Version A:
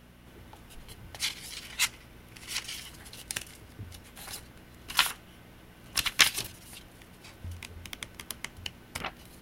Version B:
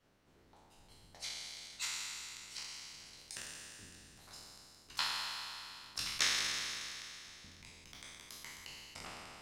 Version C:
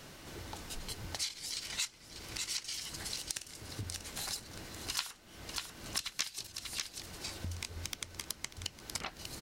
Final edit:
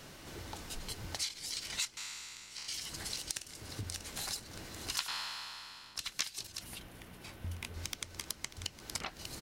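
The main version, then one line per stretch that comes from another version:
C
1.97–2.68 from B
5.08–5.99 from B
6.61–7.74 from A

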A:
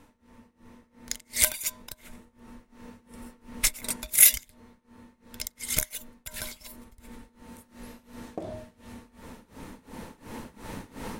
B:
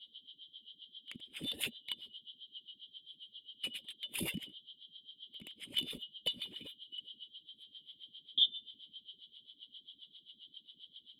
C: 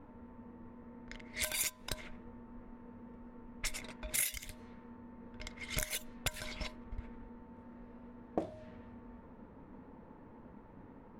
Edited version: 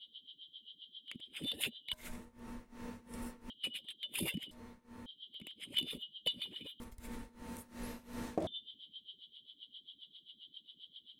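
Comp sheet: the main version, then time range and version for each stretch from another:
B
1.93–3.5 from A
4.51–5.06 from A
6.8–8.47 from A
not used: C

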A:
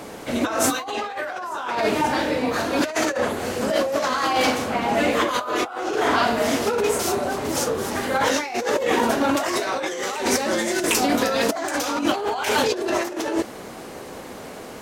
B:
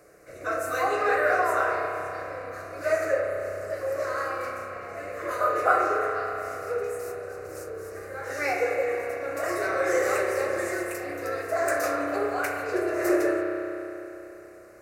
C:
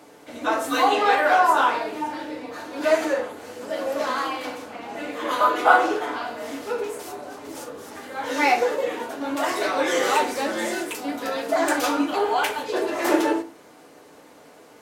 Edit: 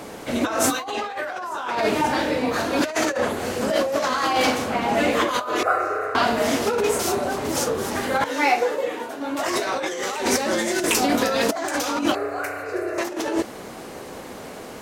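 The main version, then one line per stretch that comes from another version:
A
5.63–6.15 from B
8.24–9.39 from C
12.15–12.98 from B

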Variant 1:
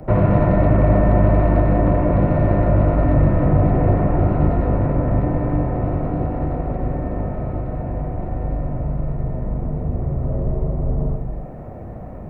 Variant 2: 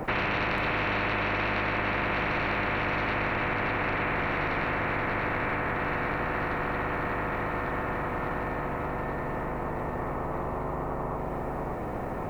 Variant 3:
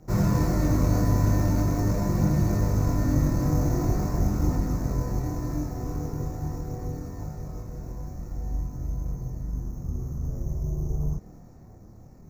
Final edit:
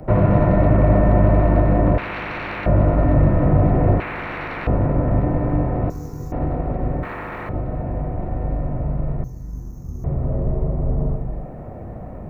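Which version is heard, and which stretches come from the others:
1
1.98–2.66 from 2
4–4.67 from 2
5.9–6.32 from 3
7.03–7.49 from 2
9.24–10.04 from 3

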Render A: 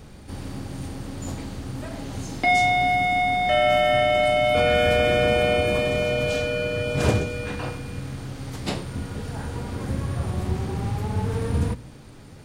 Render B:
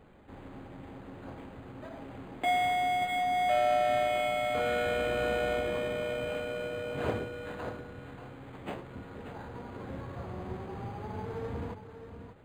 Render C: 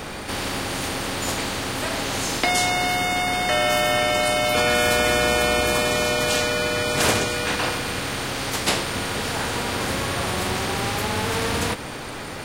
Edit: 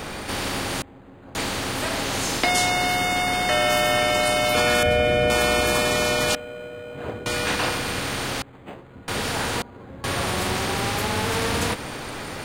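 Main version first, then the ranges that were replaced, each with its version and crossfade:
C
0.82–1.35 from B
4.83–5.3 from A
6.35–7.26 from B
8.42–9.08 from B
9.62–10.04 from B

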